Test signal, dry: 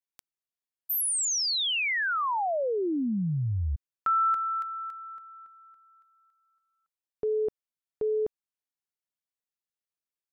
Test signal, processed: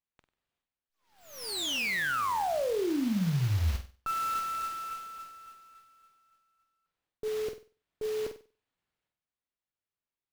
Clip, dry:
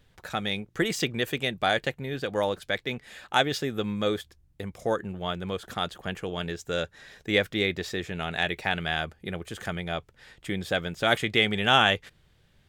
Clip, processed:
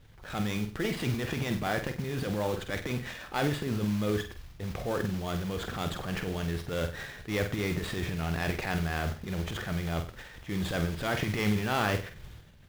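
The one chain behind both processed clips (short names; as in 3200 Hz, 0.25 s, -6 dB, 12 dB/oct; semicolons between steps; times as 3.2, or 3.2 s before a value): LPF 4800 Hz 24 dB/oct; transient shaper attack -8 dB, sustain +11 dB; low shelf 150 Hz +8 dB; treble ducked by the level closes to 2700 Hz, closed at -21 dBFS; compressor 2:1, threshold -31 dBFS; modulation noise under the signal 14 dB; flutter echo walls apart 8.2 m, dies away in 0.35 s; running maximum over 5 samples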